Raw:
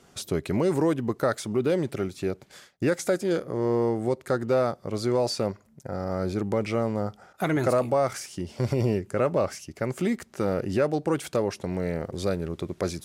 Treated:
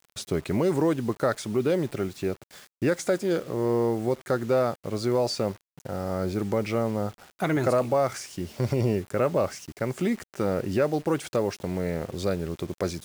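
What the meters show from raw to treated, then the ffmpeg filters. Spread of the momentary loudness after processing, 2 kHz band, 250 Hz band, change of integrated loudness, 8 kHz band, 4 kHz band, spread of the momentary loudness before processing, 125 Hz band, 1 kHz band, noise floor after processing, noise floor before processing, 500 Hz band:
8 LU, 0.0 dB, 0.0 dB, 0.0 dB, −0.5 dB, 0.0 dB, 8 LU, 0.0 dB, 0.0 dB, below −85 dBFS, −58 dBFS, 0.0 dB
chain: -af "lowpass=10000,acrusher=bits=7:mix=0:aa=0.000001"

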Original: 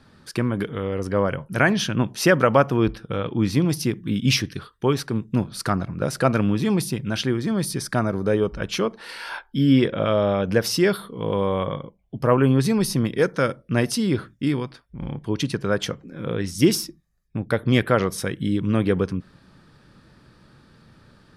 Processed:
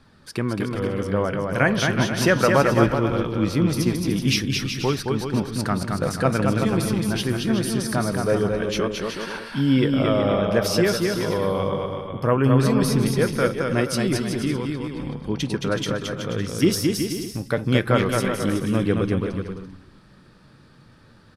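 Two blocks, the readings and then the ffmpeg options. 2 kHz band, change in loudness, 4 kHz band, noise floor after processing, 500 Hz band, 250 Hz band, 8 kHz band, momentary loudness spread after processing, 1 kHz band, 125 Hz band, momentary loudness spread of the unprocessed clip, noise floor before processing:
+1.0 dB, +0.5 dB, +1.0 dB, −51 dBFS, +0.5 dB, +0.5 dB, +0.5 dB, 9 LU, +0.5 dB, +1.0 dB, 11 LU, −57 dBFS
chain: -filter_complex "[0:a]asplit=2[link_01][link_02];[link_02]asplit=2[link_03][link_04];[link_03]adelay=352,afreqshift=-110,volume=-22dB[link_05];[link_04]adelay=704,afreqshift=-220,volume=-31.4dB[link_06];[link_05][link_06]amix=inputs=2:normalize=0[link_07];[link_01][link_07]amix=inputs=2:normalize=0,flanger=delay=0.8:depth=9.6:regen=77:speed=0.21:shape=triangular,asplit=2[link_08][link_09];[link_09]aecho=0:1:220|374|481.8|557.3|610.1:0.631|0.398|0.251|0.158|0.1[link_10];[link_08][link_10]amix=inputs=2:normalize=0,volume=3dB"

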